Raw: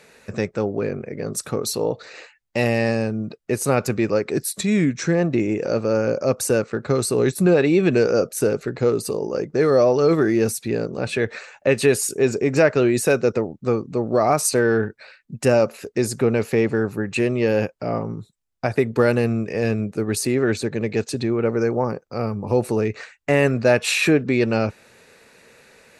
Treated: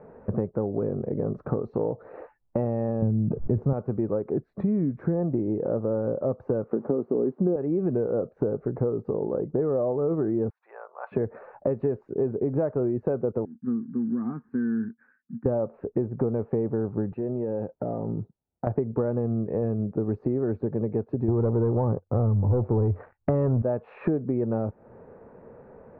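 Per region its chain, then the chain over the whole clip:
3.02–3.73 s: tone controls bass +13 dB, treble +1 dB + decay stretcher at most 44 dB/s
6.71–7.56 s: zero-crossing glitches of -17.5 dBFS + high-pass 230 Hz 24 dB/octave + tilt EQ -4.5 dB/octave
10.50–11.12 s: inverse Chebyshev high-pass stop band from 280 Hz, stop band 60 dB + peaking EQ 6.2 kHz -12.5 dB 0.68 oct
13.45–15.46 s: block-companded coder 5-bit + de-esser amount 65% + two resonant band-passes 620 Hz, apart 2.8 oct
17.12–18.67 s: compression 5:1, threshold -30 dBFS + comb of notches 1.1 kHz
21.28–23.62 s: peaking EQ 92 Hz +14.5 dB 0.61 oct + waveshaping leveller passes 2
whole clip: low-pass 1 kHz 24 dB/octave; compression 5:1, threshold -31 dBFS; bass shelf 190 Hz +4 dB; trim +5.5 dB

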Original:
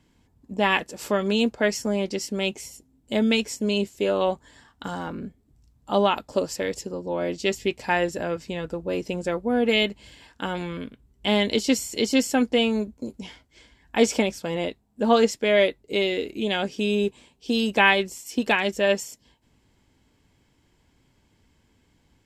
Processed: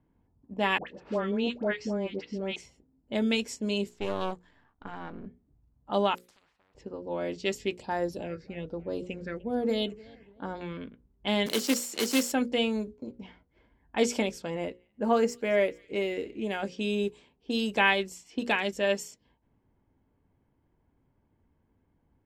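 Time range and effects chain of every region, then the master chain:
0.78–2.56 s: distance through air 180 m + phase dispersion highs, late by 93 ms, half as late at 1 kHz
3.89–5.26 s: partial rectifier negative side -12 dB + band-stop 540 Hz, Q 10
6.15–6.75 s: pre-emphasis filter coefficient 0.97 + compression 2:1, threshold -51 dBFS + spectrum-flattening compressor 10:1
7.80–10.61 s: phase shifter stages 6, 1.2 Hz, lowest notch 790–2800 Hz + modulated delay 296 ms, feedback 44%, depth 148 cents, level -22.5 dB
11.46–12.32 s: block-companded coder 3-bit + high-pass 170 Hz 24 dB/octave + treble shelf 5.8 kHz +3.5 dB
14.50–16.63 s: median filter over 3 samples + peaking EQ 3.6 kHz -14 dB 0.54 oct + feedback echo behind a high-pass 219 ms, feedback 64%, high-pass 2.8 kHz, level -21 dB
whole clip: hum notches 60/120/180/240/300/360/420/480/540 Hz; level-controlled noise filter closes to 1.1 kHz, open at -21.5 dBFS; trim -5.5 dB

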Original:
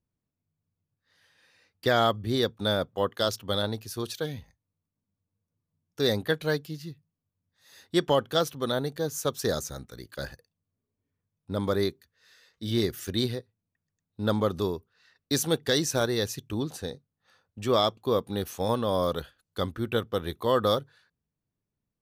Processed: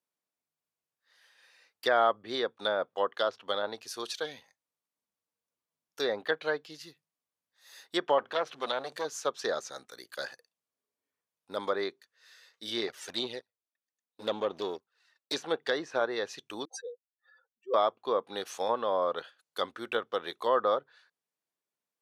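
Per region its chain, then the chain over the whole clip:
8.18–9.05 s: companding laws mixed up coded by mu + band-stop 960 Hz, Q 18 + transformer saturation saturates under 1.5 kHz
12.87–15.36 s: partial rectifier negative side -7 dB + touch-sensitive flanger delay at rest 4.1 ms, full sweep at -25 dBFS + waveshaping leveller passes 1
16.65–17.74 s: spectral contrast enhancement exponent 3.3 + steep high-pass 430 Hz
whole clip: high-pass 580 Hz 12 dB/octave; low-pass that closes with the level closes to 1.6 kHz, closed at -25.5 dBFS; trim +1.5 dB

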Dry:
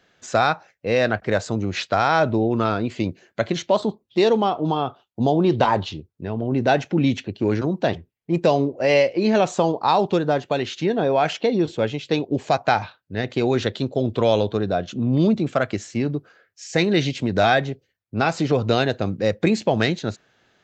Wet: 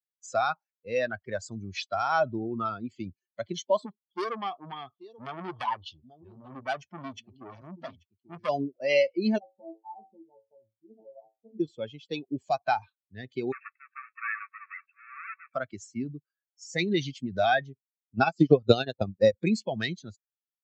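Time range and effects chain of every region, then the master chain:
3.86–8.49 s: delay 835 ms -12.5 dB + transformer saturation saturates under 2 kHz
9.38–11.60 s: steep low-pass 910 Hz 72 dB/octave + feedback comb 110 Hz, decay 0.38 s, mix 100%
13.52–15.54 s: square wave that keeps the level + brick-wall FIR band-pass 1.1–2.7 kHz + tilt EQ -1.5 dB/octave
18.15–19.33 s: transient shaper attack +11 dB, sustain -11 dB + upward compressor, threshold -29 dBFS
whole clip: expander on every frequency bin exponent 2; high-pass 94 Hz; trim -2.5 dB

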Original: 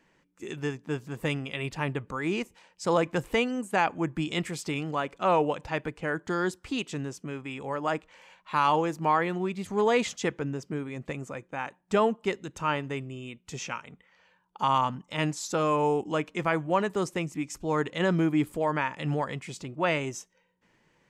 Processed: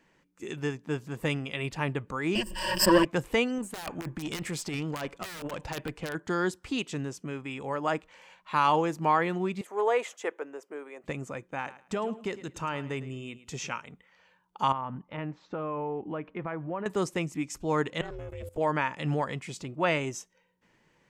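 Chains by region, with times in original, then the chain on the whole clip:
2.35–3.05 s: comb filter that takes the minimum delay 5.4 ms + rippled EQ curve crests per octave 1.3, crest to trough 17 dB + swell ahead of each attack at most 49 dB/s
3.58–6.15 s: integer overflow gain 19.5 dB + compressor with a negative ratio -31 dBFS, ratio -0.5 + valve stage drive 27 dB, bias 0.3
9.61–11.04 s: high-pass 410 Hz 24 dB/octave + peaking EQ 4.6 kHz -14 dB 1.4 oct
11.58–13.69 s: compression 5:1, threshold -27 dBFS + feedback delay 107 ms, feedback 22%, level -15.5 dB
14.72–16.86 s: Bessel low-pass 1.7 kHz, order 4 + compression 3:1, threshold -32 dBFS
18.01–18.58 s: hum notches 60/120/180/240/300 Hz + level held to a coarse grid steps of 18 dB + ring modulator 210 Hz
whole clip: none

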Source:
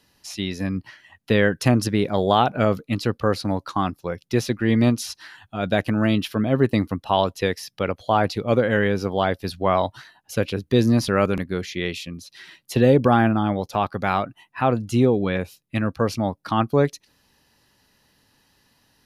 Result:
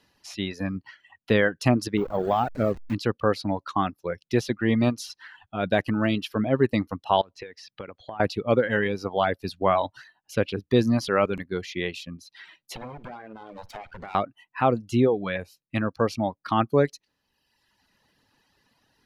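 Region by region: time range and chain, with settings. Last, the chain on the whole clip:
1.97–2.94 s: send-on-delta sampling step -25 dBFS + de-esser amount 75%
7.21–8.20 s: low-pass 4.7 kHz + compression 12:1, threshold -31 dBFS
12.75–14.15 s: comb filter that takes the minimum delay 1.3 ms + compression 12:1, threshold -32 dBFS + flutter echo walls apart 9.3 m, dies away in 0.26 s
whole clip: bass shelf 210 Hz -4.5 dB; reverb removal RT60 1.1 s; treble shelf 6 kHz -11 dB

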